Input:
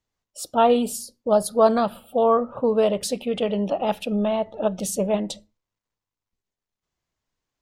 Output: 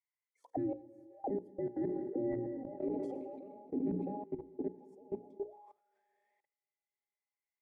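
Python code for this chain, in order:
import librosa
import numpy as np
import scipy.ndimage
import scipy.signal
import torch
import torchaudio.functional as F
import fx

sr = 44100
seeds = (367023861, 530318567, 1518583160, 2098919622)

y = fx.band_invert(x, sr, width_hz=1000)
y = fx.peak_eq(y, sr, hz=3800.0, db=-8.0, octaves=1.2)
y = fx.echo_tape(y, sr, ms=202, feedback_pct=48, wet_db=-11.5, lp_hz=1400.0, drive_db=1.0, wow_cents=11)
y = fx.rev_schroeder(y, sr, rt60_s=2.9, comb_ms=28, drr_db=10.5)
y = fx.auto_wah(y, sr, base_hz=270.0, top_hz=2100.0, q=18.0, full_db=-23.5, direction='down')
y = fx.level_steps(y, sr, step_db=22)
y = fx.low_shelf(y, sr, hz=170.0, db=10.5)
y = fx.hum_notches(y, sr, base_hz=60, count=9)
y = fx.sustainer(y, sr, db_per_s=27.0, at=(1.81, 4.24))
y = y * librosa.db_to_amplitude(8.0)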